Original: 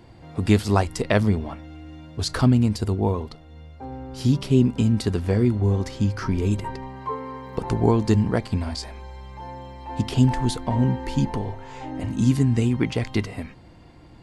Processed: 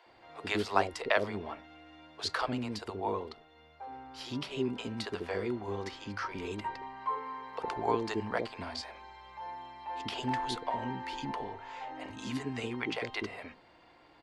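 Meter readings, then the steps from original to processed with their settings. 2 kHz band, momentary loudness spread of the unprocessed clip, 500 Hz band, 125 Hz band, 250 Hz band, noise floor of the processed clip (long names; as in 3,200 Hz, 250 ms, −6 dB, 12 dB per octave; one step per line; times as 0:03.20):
−3.0 dB, 18 LU, −9.0 dB, −23.5 dB, −16.5 dB, −60 dBFS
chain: three-way crossover with the lows and the highs turned down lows −22 dB, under 390 Hz, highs −14 dB, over 4,700 Hz
multiband delay without the direct sound highs, lows 60 ms, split 490 Hz
level −2.5 dB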